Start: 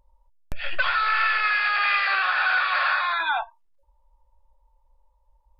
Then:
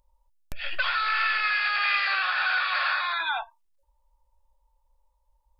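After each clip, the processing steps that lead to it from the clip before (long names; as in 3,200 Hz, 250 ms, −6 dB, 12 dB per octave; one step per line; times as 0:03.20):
high-shelf EQ 2,700 Hz +10 dB
level −6 dB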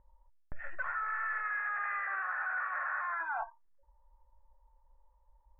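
Chebyshev low-pass filter 1,900 Hz, order 5
reversed playback
downward compressor 4 to 1, threshold −38 dBFS, peak gain reduction 13 dB
reversed playback
level +3 dB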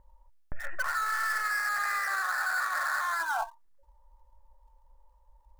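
gap after every zero crossing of 0.063 ms
level +5.5 dB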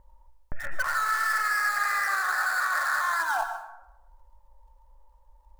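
dense smooth reverb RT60 0.83 s, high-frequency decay 0.55×, pre-delay 105 ms, DRR 8 dB
level +3 dB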